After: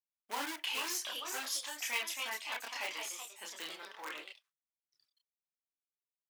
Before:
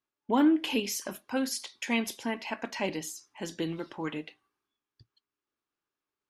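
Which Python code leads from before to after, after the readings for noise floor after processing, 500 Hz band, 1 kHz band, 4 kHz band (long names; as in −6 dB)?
below −85 dBFS, −15.0 dB, −6.0 dB, −0.5 dB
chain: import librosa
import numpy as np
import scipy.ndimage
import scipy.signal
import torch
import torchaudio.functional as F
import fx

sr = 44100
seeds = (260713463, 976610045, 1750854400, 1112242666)

p1 = fx.law_mismatch(x, sr, coded='A')
p2 = fx.chorus_voices(p1, sr, voices=4, hz=0.34, base_ms=30, depth_ms=2.7, mix_pct=45)
p3 = fx.echo_pitch(p2, sr, ms=479, semitones=2, count=2, db_per_echo=-6.0)
p4 = (np.mod(10.0 ** (28.0 / 20.0) * p3 + 1.0, 2.0) - 1.0) / 10.0 ** (28.0 / 20.0)
p5 = p3 + (p4 * librosa.db_to_amplitude(-8.0))
y = scipy.signal.sosfilt(scipy.signal.butter(2, 1100.0, 'highpass', fs=sr, output='sos'), p5)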